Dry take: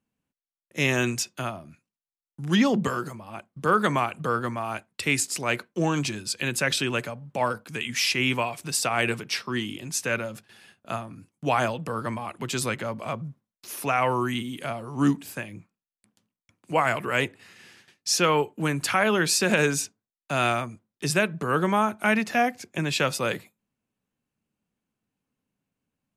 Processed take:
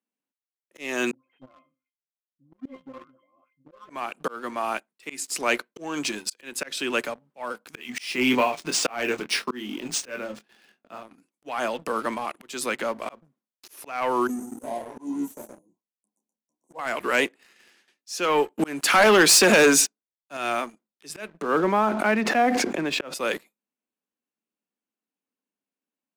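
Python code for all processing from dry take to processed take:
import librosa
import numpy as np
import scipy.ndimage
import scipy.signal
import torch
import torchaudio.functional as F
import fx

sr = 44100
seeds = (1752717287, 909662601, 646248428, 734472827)

y = fx.chain(x, sr, fx.octave_resonator(note='C', decay_s=0.2),
    fx.dispersion(late='highs', ms=147.0, hz=1100.0),
    fx.resample_bad(factor=6, down='none', up='filtered'), at=(1.11, 3.9))
y = fx.chain(y, sr, fx.low_shelf(hz=340.0, db=7.0),
    fx.doubler(ms=24.0, db=-7.0),
    fx.resample_linear(factor=3), at=(7.74, 11.03))
y = fx.chain(y, sr, fx.brickwall_bandstop(low_hz=1100.0, high_hz=5600.0),
    fx.echo_single(ms=121, db=-4.5),
    fx.detune_double(cents=10), at=(14.27, 16.79))
y = fx.chain(y, sr, fx.highpass(hz=86.0, slope=12),
    fx.leveller(passes=2), at=(18.59, 20.37))
y = fx.chain(y, sr, fx.lowpass(hz=1200.0, slope=6),
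    fx.sustainer(db_per_s=30.0), at=(21.42, 23.14))
y = scipy.signal.sosfilt(scipy.signal.butter(4, 240.0, 'highpass', fs=sr, output='sos'), y)
y = fx.leveller(y, sr, passes=2)
y = fx.auto_swell(y, sr, attack_ms=363.0)
y = F.gain(torch.from_numpy(y), -3.5).numpy()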